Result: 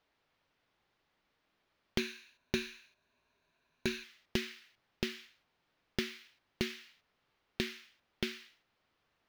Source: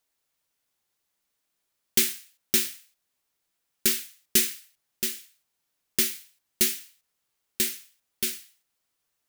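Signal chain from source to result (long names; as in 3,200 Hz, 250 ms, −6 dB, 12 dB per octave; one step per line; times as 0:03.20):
0:01.98–0:04.04: EQ curve with evenly spaced ripples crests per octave 1.5, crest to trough 10 dB
downward compressor 4 to 1, threshold −34 dBFS, peak gain reduction 15.5 dB
high-frequency loss of the air 280 metres
level +9.5 dB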